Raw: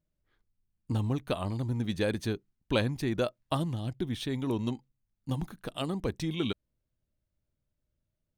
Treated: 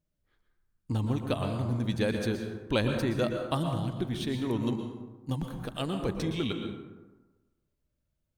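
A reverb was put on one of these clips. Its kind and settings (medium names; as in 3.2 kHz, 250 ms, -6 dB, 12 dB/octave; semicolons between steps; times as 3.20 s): plate-style reverb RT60 1.2 s, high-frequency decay 0.45×, pre-delay 105 ms, DRR 4 dB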